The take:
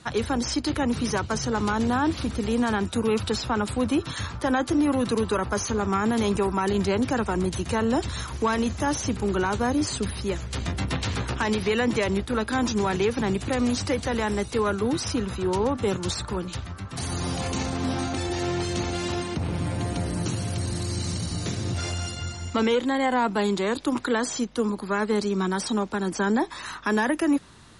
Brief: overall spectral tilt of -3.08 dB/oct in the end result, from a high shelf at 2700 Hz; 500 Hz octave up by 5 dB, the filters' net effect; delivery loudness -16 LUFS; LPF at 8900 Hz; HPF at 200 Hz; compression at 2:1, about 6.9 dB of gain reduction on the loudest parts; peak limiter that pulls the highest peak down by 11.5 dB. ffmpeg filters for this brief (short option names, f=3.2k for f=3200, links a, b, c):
-af "highpass=200,lowpass=8.9k,equalizer=f=500:t=o:g=6,highshelf=f=2.7k:g=9,acompressor=threshold=-28dB:ratio=2,volume=17.5dB,alimiter=limit=-7.5dB:level=0:latency=1"